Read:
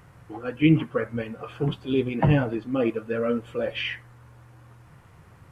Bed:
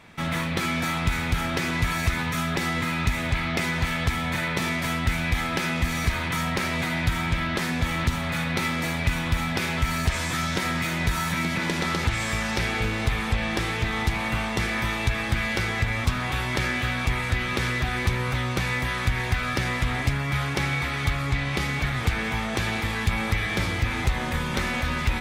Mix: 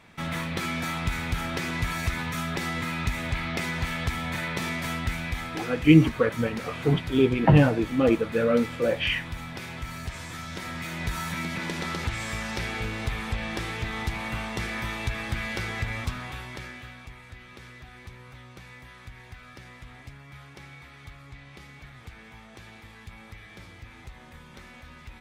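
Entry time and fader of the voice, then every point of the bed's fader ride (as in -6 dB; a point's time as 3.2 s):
5.25 s, +3.0 dB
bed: 4.96 s -4 dB
5.95 s -11.5 dB
10.42 s -11.5 dB
11.14 s -5.5 dB
15.96 s -5.5 dB
17.15 s -20.5 dB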